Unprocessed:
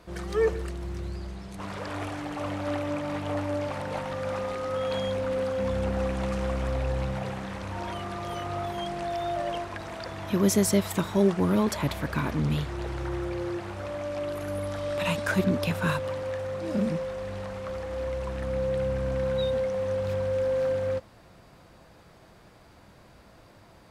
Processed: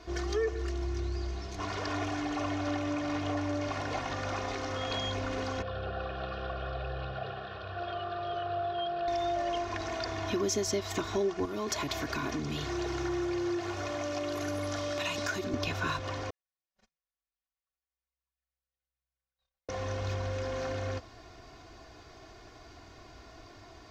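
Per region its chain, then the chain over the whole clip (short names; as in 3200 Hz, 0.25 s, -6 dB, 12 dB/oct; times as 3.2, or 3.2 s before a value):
5.62–9.08 HPF 130 Hz + air absorption 210 m + fixed phaser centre 1400 Hz, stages 8
11.45–15.54 HPF 100 Hz + compressor 4:1, threshold -28 dBFS + high shelf 8000 Hz +10 dB
16.3–19.69 gate -21 dBFS, range -57 dB + passive tone stack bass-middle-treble 10-0-10 + comb 5.3 ms, depth 83%
whole clip: resonant high shelf 7600 Hz -8.5 dB, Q 3; comb 2.8 ms, depth 78%; compressor 3:1, threshold -30 dBFS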